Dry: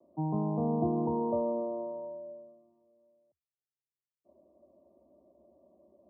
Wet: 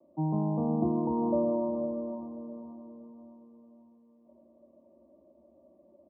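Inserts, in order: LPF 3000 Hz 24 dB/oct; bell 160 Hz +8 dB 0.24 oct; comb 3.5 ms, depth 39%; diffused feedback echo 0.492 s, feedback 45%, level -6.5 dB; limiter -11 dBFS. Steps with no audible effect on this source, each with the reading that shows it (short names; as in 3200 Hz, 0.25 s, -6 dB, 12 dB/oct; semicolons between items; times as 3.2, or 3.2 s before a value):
LPF 3000 Hz: input band ends at 1100 Hz; limiter -11 dBFS: input peak -16.0 dBFS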